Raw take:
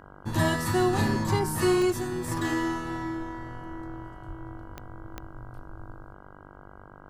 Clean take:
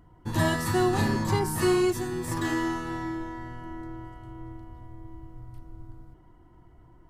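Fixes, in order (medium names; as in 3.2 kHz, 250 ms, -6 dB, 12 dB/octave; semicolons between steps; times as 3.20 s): de-click; de-hum 49 Hz, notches 33; 4.27–4.39 s: high-pass 140 Hz 24 dB/octave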